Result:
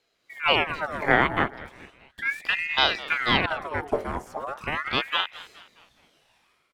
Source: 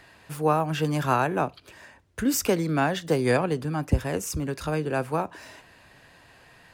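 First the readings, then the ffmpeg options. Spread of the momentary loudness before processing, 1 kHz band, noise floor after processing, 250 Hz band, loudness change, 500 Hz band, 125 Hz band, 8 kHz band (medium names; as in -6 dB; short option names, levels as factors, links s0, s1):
7 LU, +1.0 dB, -70 dBFS, -7.0 dB, +1.0 dB, -4.0 dB, -9.5 dB, under -15 dB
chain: -filter_complex "[0:a]acrossover=split=2700[s0][s1];[s1]acompressor=threshold=0.00562:ratio=4:attack=1:release=60[s2];[s0][s2]amix=inputs=2:normalize=0,bandreject=f=50:t=h:w=6,bandreject=f=100:t=h:w=6,bandreject=f=150:t=h:w=6,bandreject=f=200:t=h:w=6,bandreject=f=250:t=h:w=6,bandreject=f=300:t=h:w=6,bandreject=f=350:t=h:w=6,bandreject=f=400:t=h:w=6,afwtdn=0.0251,acrossover=split=740|900[s3][s4][s5];[s5]dynaudnorm=f=110:g=7:m=3.98[s6];[s3][s4][s6]amix=inputs=3:normalize=0,asplit=5[s7][s8][s9][s10][s11];[s8]adelay=210,afreqshift=-32,volume=0.126[s12];[s9]adelay=420,afreqshift=-64,volume=0.0569[s13];[s10]adelay=630,afreqshift=-96,volume=0.0254[s14];[s11]adelay=840,afreqshift=-128,volume=0.0115[s15];[s7][s12][s13][s14][s15]amix=inputs=5:normalize=0,aeval=exprs='val(0)*sin(2*PI*1400*n/s+1400*0.65/0.37*sin(2*PI*0.37*n/s))':c=same"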